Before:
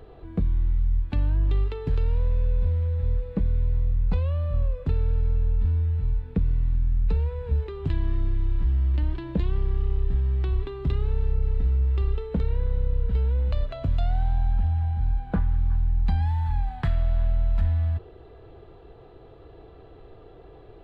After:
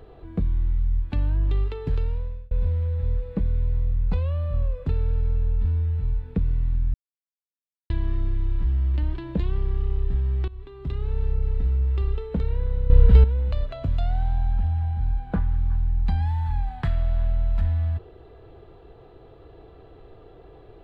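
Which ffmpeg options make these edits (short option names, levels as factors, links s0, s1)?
-filter_complex "[0:a]asplit=7[s0][s1][s2][s3][s4][s5][s6];[s0]atrim=end=2.51,asetpts=PTS-STARTPTS,afade=t=out:st=1.95:d=0.56[s7];[s1]atrim=start=2.51:end=6.94,asetpts=PTS-STARTPTS,afade=t=in:d=0.004:c=hsin,afade=t=out:st=4.426:d=0.004:c=hsin[s8];[s2]atrim=start=6.94:end=7.9,asetpts=PTS-STARTPTS,volume=0[s9];[s3]atrim=start=7.9:end=10.48,asetpts=PTS-STARTPTS,afade=t=in:d=0.004:c=hsin,afade=t=out:st=2.576:d=0.004:c=hsin:silence=0.105925[s10];[s4]atrim=start=10.48:end=12.902,asetpts=PTS-STARTPTS,afade=t=in:d=0.75:silence=0.105925[s11];[s5]atrim=start=12.898:end=13.242,asetpts=PTS-STARTPTS,volume=3.55[s12];[s6]atrim=start=13.238[s13];[s7][s8][s9][s10][s11]concat=n=5:v=0:a=1[s14];[s14][s12]acrossfade=d=0.004:c1=hsin:c2=hsin[s15];[s15][s13]acrossfade=d=0.004:c1=hsin:c2=hsin"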